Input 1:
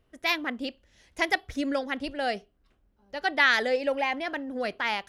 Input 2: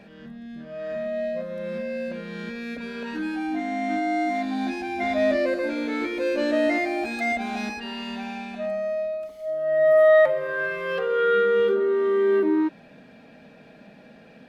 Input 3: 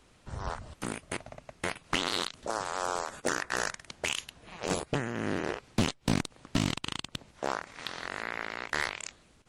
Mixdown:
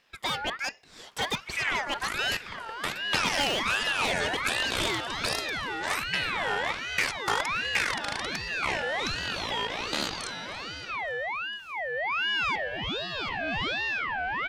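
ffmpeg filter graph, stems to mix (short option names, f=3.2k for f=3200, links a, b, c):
-filter_complex "[0:a]dynaudnorm=f=130:g=5:m=5dB,volume=-7dB,asplit=2[a][b];[1:a]highpass=130,adelay=2300,volume=-4.5dB,afade=t=out:st=5.18:d=0.71:silence=0.354813[c];[2:a]aecho=1:1:3:0.84,adelay=1200,volume=1dB,asplit=2[d][e];[e]volume=-21dB[f];[b]apad=whole_len=740336[g];[c][g]sidechaincompress=threshold=-32dB:ratio=8:attack=16:release=264[h];[a][h]amix=inputs=2:normalize=0,asplit=2[i][j];[j]highpass=f=720:p=1,volume=26dB,asoftclip=type=tanh:threshold=-10.5dB[k];[i][k]amix=inputs=2:normalize=0,lowpass=f=5.8k:p=1,volume=-6dB,acompressor=threshold=-37dB:ratio=1.5,volume=0dB[l];[f]aecho=0:1:281|562|843|1124|1405|1686|1967:1|0.51|0.26|0.133|0.0677|0.0345|0.0176[m];[d][l][m]amix=inputs=3:normalize=0,aeval=exprs='val(0)*sin(2*PI*1700*n/s+1700*0.35/1.3*sin(2*PI*1.3*n/s))':c=same"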